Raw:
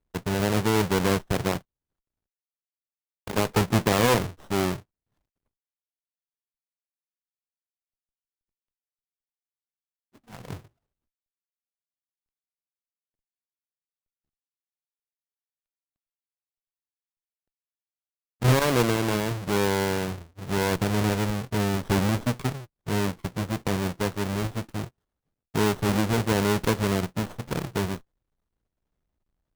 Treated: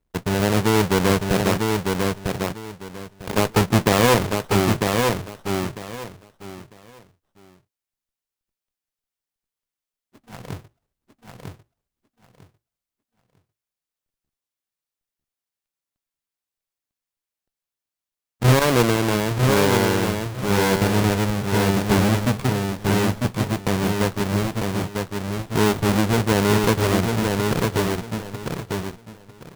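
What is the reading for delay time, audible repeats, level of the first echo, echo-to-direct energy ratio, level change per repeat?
0.949 s, 3, -4.0 dB, -4.0 dB, -13.5 dB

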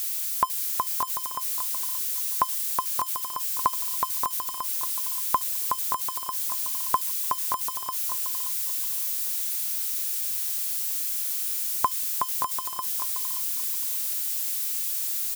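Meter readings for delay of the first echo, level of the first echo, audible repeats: 0.576 s, -7.0 dB, 2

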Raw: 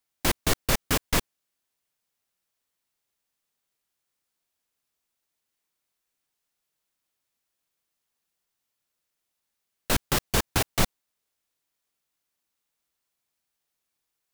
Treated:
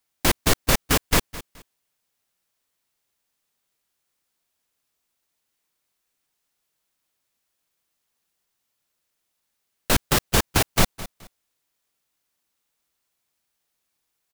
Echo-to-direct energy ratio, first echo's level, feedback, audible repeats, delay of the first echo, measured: -16.5 dB, -17.0 dB, 26%, 2, 0.212 s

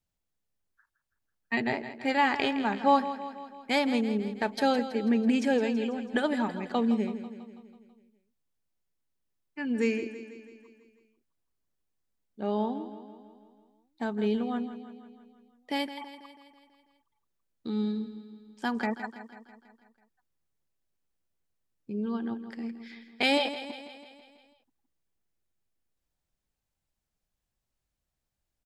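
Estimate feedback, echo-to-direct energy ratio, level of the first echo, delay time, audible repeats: 59%, -10.5 dB, -12.5 dB, 0.164 s, 5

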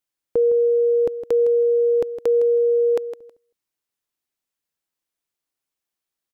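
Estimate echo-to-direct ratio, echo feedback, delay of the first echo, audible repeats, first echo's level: -11.5 dB, 18%, 0.16 s, 2, -11.5 dB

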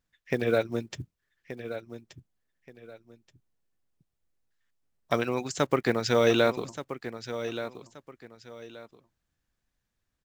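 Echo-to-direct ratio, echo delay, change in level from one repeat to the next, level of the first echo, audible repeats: -11.0 dB, 1.177 s, -11.5 dB, -11.5 dB, 2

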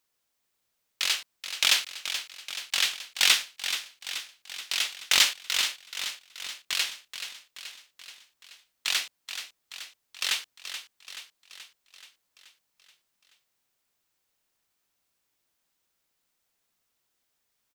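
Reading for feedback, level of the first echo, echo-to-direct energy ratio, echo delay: 59%, -10.0 dB, -8.0 dB, 0.429 s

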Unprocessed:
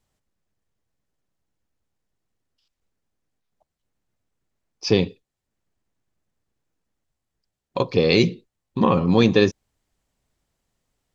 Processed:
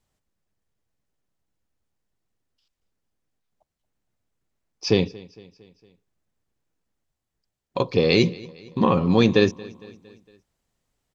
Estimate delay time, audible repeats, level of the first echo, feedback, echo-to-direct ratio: 0.229 s, 3, -22.0 dB, 54%, -20.5 dB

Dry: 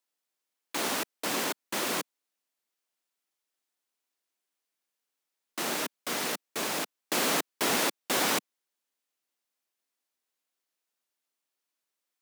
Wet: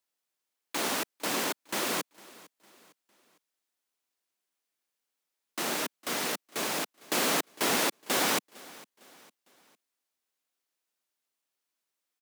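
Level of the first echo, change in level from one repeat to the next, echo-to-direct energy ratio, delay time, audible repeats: -22.0 dB, -7.5 dB, -21.0 dB, 0.455 s, 2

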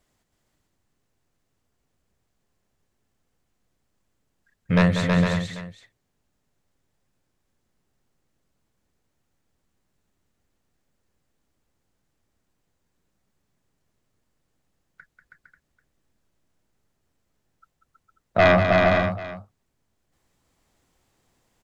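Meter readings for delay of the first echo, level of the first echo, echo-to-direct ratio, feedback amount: 0.19 s, -8.0 dB, 0.0 dB, no steady repeat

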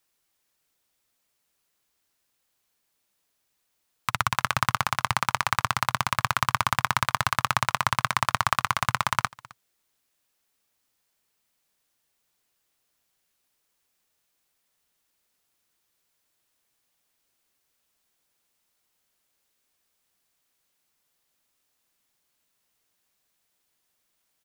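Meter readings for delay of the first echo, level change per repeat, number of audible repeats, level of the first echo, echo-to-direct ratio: 0.262 s, no steady repeat, 1, -22.5 dB, -22.5 dB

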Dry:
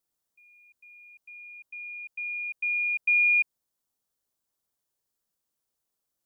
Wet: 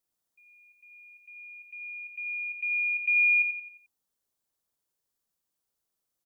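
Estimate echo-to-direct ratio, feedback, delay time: -7.0 dB, 42%, 88 ms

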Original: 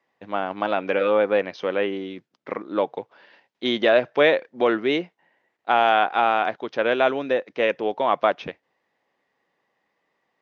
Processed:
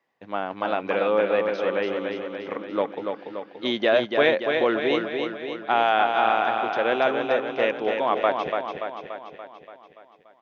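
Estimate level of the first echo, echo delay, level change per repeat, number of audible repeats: -5.0 dB, 0.288 s, -4.5 dB, 7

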